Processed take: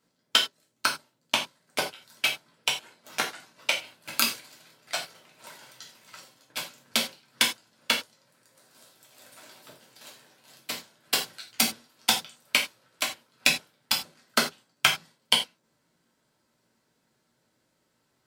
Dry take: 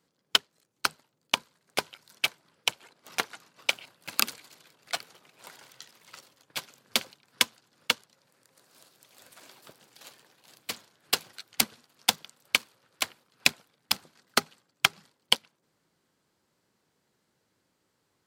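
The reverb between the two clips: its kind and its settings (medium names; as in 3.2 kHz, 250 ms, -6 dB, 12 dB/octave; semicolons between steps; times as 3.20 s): gated-style reverb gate 120 ms falling, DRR -2.5 dB; trim -2 dB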